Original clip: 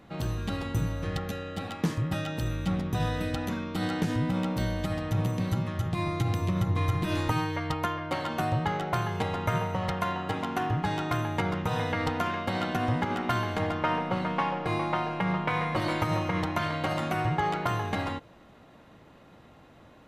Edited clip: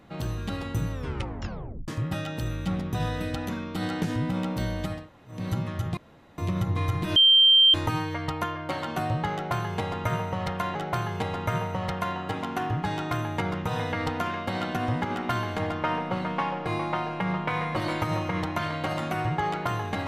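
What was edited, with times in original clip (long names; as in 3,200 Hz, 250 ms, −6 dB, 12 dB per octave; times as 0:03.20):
0:00.92: tape stop 0.96 s
0:04.98–0:05.38: fill with room tone, crossfade 0.24 s
0:05.97–0:06.38: fill with room tone
0:07.16: insert tone 3,150 Hz −13.5 dBFS 0.58 s
0:08.75–0:10.17: repeat, 2 plays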